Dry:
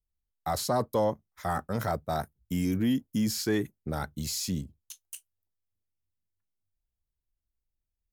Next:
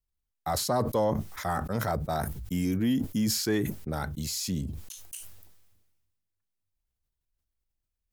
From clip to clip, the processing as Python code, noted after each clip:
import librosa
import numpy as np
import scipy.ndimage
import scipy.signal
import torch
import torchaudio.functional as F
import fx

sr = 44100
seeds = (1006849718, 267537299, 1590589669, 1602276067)

y = fx.sustainer(x, sr, db_per_s=40.0)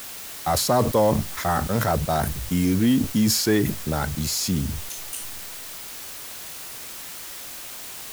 y = fx.dmg_noise_colour(x, sr, seeds[0], colour='white', level_db=-44.0)
y = F.gain(torch.from_numpy(y), 7.0).numpy()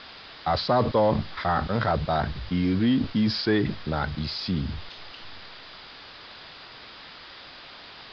y = scipy.signal.sosfilt(scipy.signal.cheby1(6, 3, 5000.0, 'lowpass', fs=sr, output='sos'), x)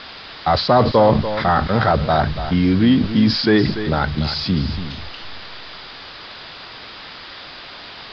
y = x + 10.0 ** (-11.0 / 20.0) * np.pad(x, (int(289 * sr / 1000.0), 0))[:len(x)]
y = F.gain(torch.from_numpy(y), 8.0).numpy()